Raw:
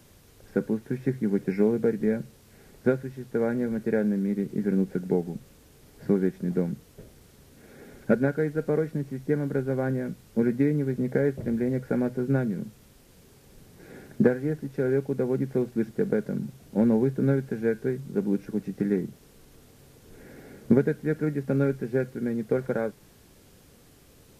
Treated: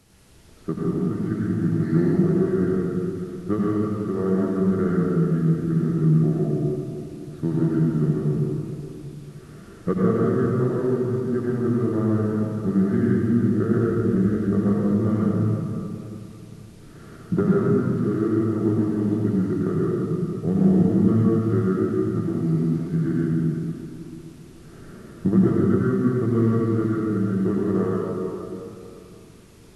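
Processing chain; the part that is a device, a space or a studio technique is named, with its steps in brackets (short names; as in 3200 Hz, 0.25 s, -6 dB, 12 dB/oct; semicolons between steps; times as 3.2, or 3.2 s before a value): slowed and reverbed (varispeed -18%; reverb RT60 2.8 s, pre-delay 80 ms, DRR -6 dB); gain -2.5 dB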